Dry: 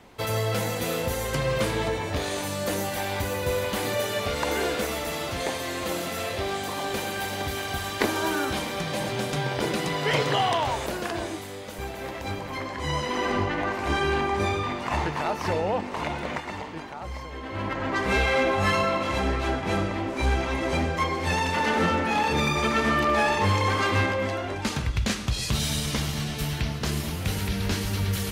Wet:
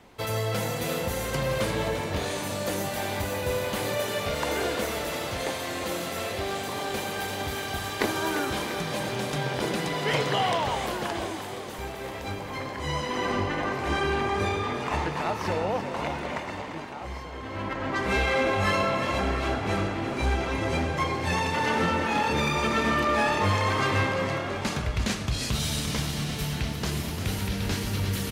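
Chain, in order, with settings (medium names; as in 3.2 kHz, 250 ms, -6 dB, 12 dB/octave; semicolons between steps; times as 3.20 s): frequency-shifting echo 346 ms, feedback 58%, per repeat +38 Hz, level -9.5 dB; trim -2 dB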